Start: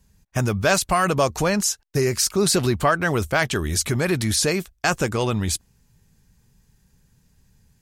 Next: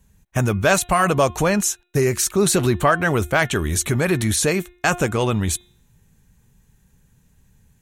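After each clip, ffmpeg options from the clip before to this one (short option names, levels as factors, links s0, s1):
-af "equalizer=f=4900:w=4.6:g=-12,bandreject=f=355.1:t=h:w=4,bandreject=f=710.2:t=h:w=4,bandreject=f=1065.3:t=h:w=4,bandreject=f=1420.4:t=h:w=4,bandreject=f=1775.5:t=h:w=4,bandreject=f=2130.6:t=h:w=4,bandreject=f=2485.7:t=h:w=4,bandreject=f=2840.8:t=h:w=4,bandreject=f=3195.9:t=h:w=4,bandreject=f=3551:t=h:w=4,bandreject=f=3906.1:t=h:w=4,volume=1.33"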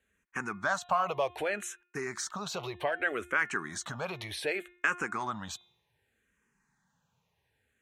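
-filter_complex "[0:a]acompressor=threshold=0.112:ratio=4,bandpass=f=1400:t=q:w=0.73:csg=0,asplit=2[s0][s1];[s1]afreqshift=-0.65[s2];[s0][s2]amix=inputs=2:normalize=1,volume=0.891"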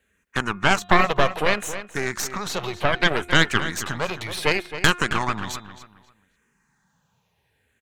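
-filter_complex "[0:a]aeval=exprs='0.237*(cos(1*acos(clip(val(0)/0.237,-1,1)))-cos(1*PI/2))+0.106*(cos(6*acos(clip(val(0)/0.237,-1,1)))-cos(6*PI/2))+0.0211*(cos(8*acos(clip(val(0)/0.237,-1,1)))-cos(8*PI/2))':c=same,asplit=2[s0][s1];[s1]adelay=268,lowpass=f=4200:p=1,volume=0.266,asplit=2[s2][s3];[s3]adelay=268,lowpass=f=4200:p=1,volume=0.28,asplit=2[s4][s5];[s5]adelay=268,lowpass=f=4200:p=1,volume=0.28[s6];[s2][s4][s6]amix=inputs=3:normalize=0[s7];[s0][s7]amix=inputs=2:normalize=0,volume=2.37"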